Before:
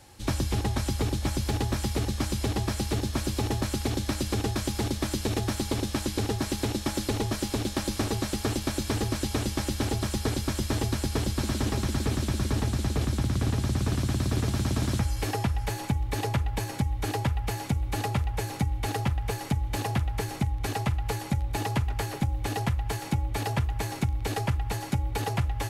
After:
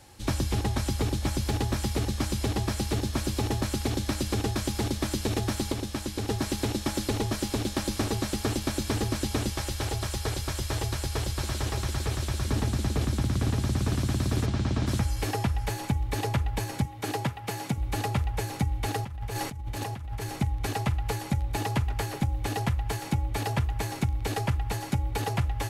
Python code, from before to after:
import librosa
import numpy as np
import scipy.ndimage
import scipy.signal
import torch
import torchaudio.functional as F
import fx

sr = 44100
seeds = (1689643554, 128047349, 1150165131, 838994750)

y = fx.peak_eq(x, sr, hz=240.0, db=-13.5, octaves=0.78, at=(9.5, 12.48))
y = fx.air_absorb(y, sr, metres=97.0, at=(14.45, 14.86), fade=0.02)
y = fx.highpass(y, sr, hz=120.0, slope=24, at=(16.85, 17.78))
y = fx.over_compress(y, sr, threshold_db=-34.0, ratio=-1.0, at=(19.01, 20.26))
y = fx.edit(y, sr, fx.clip_gain(start_s=5.72, length_s=0.56, db=-3.5), tone=tone)